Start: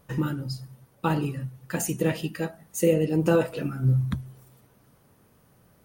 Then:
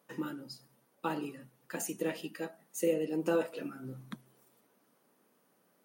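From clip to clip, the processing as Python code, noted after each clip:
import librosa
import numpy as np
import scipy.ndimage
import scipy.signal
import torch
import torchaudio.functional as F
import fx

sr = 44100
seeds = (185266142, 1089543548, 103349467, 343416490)

y = scipy.signal.sosfilt(scipy.signal.butter(4, 220.0, 'highpass', fs=sr, output='sos'), x)
y = F.gain(torch.from_numpy(y), -8.0).numpy()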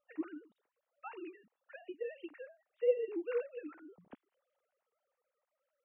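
y = fx.sine_speech(x, sr)
y = F.gain(torch.from_numpy(y), -4.0).numpy()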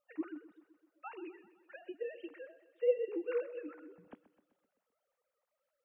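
y = fx.echo_feedback(x, sr, ms=128, feedback_pct=59, wet_db=-16.0)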